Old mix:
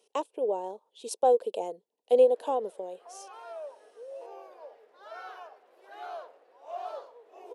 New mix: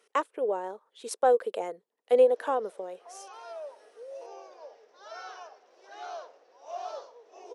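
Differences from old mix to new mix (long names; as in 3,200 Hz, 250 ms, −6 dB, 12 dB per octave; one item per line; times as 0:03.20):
speech: add flat-topped bell 1,600 Hz +15.5 dB 1.1 octaves
background: add low-pass with resonance 5,800 Hz, resonance Q 6.5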